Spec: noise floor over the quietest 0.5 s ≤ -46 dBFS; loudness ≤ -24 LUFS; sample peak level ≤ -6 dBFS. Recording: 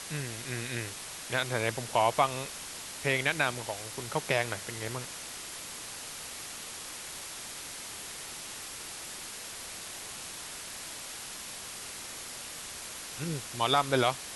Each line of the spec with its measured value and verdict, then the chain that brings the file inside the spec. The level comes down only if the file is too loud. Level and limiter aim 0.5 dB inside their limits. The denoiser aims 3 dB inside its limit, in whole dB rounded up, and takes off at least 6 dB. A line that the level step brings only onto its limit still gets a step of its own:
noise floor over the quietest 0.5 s -42 dBFS: fail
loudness -34.0 LUFS: pass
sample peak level -11.5 dBFS: pass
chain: noise reduction 7 dB, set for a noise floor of -42 dBFS

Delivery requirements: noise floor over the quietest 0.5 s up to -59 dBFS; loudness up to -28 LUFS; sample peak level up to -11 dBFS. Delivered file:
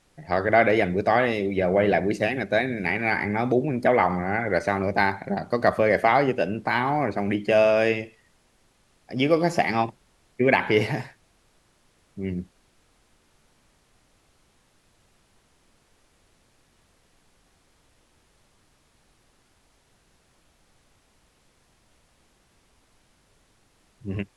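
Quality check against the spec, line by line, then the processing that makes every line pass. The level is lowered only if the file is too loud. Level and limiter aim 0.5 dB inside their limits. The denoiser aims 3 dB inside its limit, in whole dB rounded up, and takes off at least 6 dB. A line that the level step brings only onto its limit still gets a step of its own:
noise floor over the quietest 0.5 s -63 dBFS: pass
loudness -23.0 LUFS: fail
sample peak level -6.0 dBFS: fail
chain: trim -5.5 dB

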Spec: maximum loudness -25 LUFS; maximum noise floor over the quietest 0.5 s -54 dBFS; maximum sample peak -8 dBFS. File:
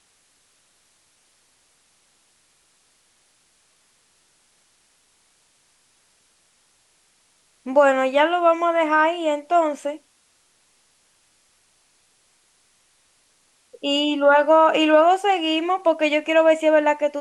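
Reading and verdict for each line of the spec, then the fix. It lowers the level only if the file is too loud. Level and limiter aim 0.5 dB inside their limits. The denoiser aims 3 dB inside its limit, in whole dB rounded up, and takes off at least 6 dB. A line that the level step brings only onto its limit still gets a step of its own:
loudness -18.5 LUFS: fail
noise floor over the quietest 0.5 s -62 dBFS: pass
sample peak -5.0 dBFS: fail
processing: trim -7 dB

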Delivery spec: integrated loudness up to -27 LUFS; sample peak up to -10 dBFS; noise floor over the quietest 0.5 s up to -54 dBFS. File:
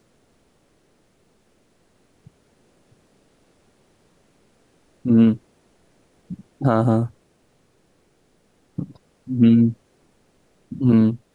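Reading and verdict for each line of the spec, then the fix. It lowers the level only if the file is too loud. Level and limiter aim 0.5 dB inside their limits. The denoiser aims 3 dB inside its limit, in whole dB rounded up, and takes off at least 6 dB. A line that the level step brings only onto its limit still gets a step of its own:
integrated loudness -19.0 LUFS: fail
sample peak -4.5 dBFS: fail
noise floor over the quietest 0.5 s -61 dBFS: pass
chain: trim -8.5 dB

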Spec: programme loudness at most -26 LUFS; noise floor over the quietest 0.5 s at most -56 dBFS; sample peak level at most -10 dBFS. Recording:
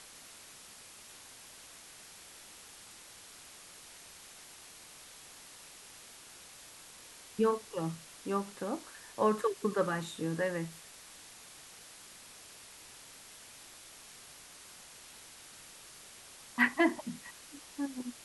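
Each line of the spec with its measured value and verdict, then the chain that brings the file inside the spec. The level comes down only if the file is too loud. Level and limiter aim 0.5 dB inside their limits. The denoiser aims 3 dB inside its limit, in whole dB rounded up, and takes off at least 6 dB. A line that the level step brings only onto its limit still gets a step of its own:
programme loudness -34.0 LUFS: pass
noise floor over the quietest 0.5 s -53 dBFS: fail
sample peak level -14.0 dBFS: pass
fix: noise reduction 6 dB, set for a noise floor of -53 dBFS

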